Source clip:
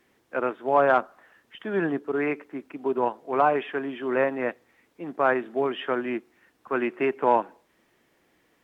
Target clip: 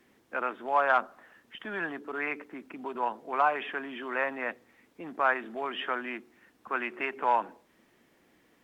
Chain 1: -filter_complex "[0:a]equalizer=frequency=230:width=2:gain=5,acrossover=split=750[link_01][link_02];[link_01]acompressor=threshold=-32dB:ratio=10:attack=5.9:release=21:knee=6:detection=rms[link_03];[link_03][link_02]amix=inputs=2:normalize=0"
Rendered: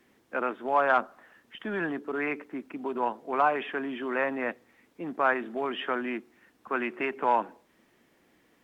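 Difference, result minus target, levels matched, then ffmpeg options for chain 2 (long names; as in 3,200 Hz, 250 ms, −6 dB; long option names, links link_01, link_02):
downward compressor: peak gain reduction −8 dB
-filter_complex "[0:a]equalizer=frequency=230:width=2:gain=5,acrossover=split=750[link_01][link_02];[link_01]acompressor=threshold=-41dB:ratio=10:attack=5.9:release=21:knee=6:detection=rms[link_03];[link_03][link_02]amix=inputs=2:normalize=0"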